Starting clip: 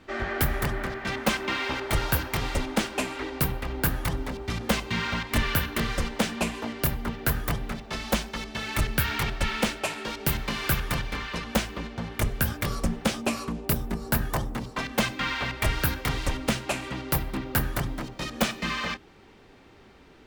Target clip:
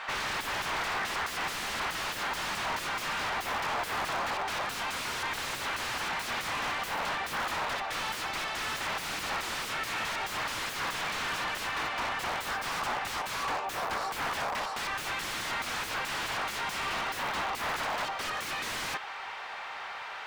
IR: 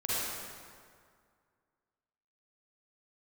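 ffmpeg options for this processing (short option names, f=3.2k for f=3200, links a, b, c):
-filter_complex "[0:a]aeval=exprs='(mod(31.6*val(0)+1,2)-1)/31.6':c=same,highpass=f=760:w=0.5412,highpass=f=760:w=1.3066,asplit=2[a][b];[b]highpass=f=720:p=1,volume=31dB,asoftclip=type=tanh:threshold=-21.5dB[c];[a][c]amix=inputs=2:normalize=0,lowpass=f=1.4k:p=1,volume=-6dB"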